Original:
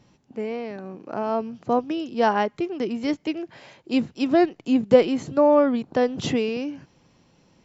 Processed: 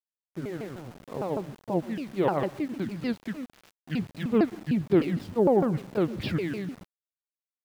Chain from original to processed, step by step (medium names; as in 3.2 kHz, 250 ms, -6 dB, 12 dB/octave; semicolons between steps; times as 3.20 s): sawtooth pitch modulation -9.5 st, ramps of 152 ms; resampled via 11.025 kHz; on a send at -20 dB: reverberation RT60 0.55 s, pre-delay 112 ms; on the sum: small samples zeroed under -39.5 dBFS; trim -4 dB